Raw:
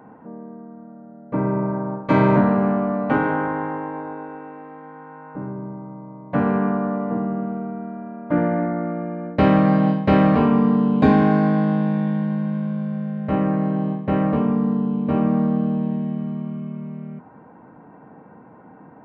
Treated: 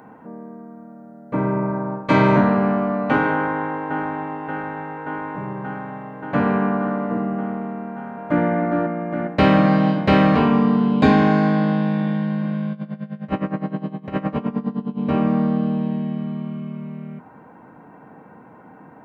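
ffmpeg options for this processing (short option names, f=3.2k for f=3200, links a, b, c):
-filter_complex "[0:a]asplit=2[a][b];[b]afade=t=in:st=3.32:d=0.01,afade=t=out:st=4.39:d=0.01,aecho=0:1:580|1160|1740|2320|2900|3480|4060|4640|5220|5800|6380|6960:0.668344|0.534675|0.42774|0.342192|0.273754|0.219003|0.175202|0.140162|0.11213|0.0897036|0.0717629|0.0574103[c];[a][c]amix=inputs=2:normalize=0,asplit=2[d][e];[e]afade=t=in:st=7.76:d=0.01,afade=t=out:st=8.45:d=0.01,aecho=0:1:410|820|1230|1640|2050|2460|2870|3280|3690|4100|4510|4920:0.501187|0.40095|0.32076|0.256608|0.205286|0.164229|0.131383|0.105107|0.0840853|0.0672682|0.0538146|0.0430517[f];[d][f]amix=inputs=2:normalize=0,asettb=1/sr,asplit=3[g][h][i];[g]atrim=end=12.724[j];[h]atrim=start=12.72:end=14.99,asetpts=PTS-STARTPTS,afade=t=in:d=0.004:c=qsin,afade=t=out:st=2.266:d=0.004:c=qsin,aeval=exprs='val(0)*pow(10,-18*(0.5-0.5*cos(2*PI*9.7*n/s))/20)':c=same[k];[i]atrim=start=14.986[l];[j][k]acrossfade=d=0.004:c1=hsin:c2=qsin[m];[m][l]acrossfade=d=0.004:c1=qsin:c2=hsin,highshelf=f=2.1k:g=11"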